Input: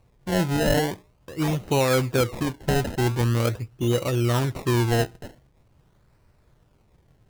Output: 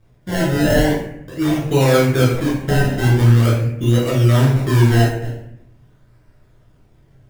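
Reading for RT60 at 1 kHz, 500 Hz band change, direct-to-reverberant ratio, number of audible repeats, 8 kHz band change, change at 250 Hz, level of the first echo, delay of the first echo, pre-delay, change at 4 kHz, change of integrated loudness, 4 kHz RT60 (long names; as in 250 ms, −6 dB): 0.70 s, +6.0 dB, −6.0 dB, no echo audible, +3.5 dB, +8.0 dB, no echo audible, no echo audible, 10 ms, +4.5 dB, +8.0 dB, 0.50 s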